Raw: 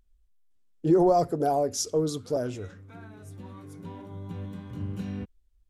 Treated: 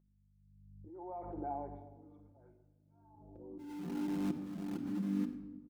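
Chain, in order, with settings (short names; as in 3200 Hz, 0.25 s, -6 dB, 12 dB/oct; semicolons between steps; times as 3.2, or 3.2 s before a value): high-pass sweep 1700 Hz -> 200 Hz, 2.87–3.81; echo 0.118 s -19.5 dB; low-pass opened by the level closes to 510 Hz, open at -29 dBFS; vocal tract filter u; in parallel at -6 dB: sample gate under -42 dBFS; on the sum: hum 50 Hz, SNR 22 dB; low shelf 120 Hz -10 dB; gate with hold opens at -58 dBFS; compressor 2:1, threshold -57 dBFS, peak gain reduction 13.5 dB; auto swell 0.793 s; on a send at -3.5 dB: reverb RT60 1.2 s, pre-delay 6 ms; on the sum: backwards sustainer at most 34 dB/s; gain +18 dB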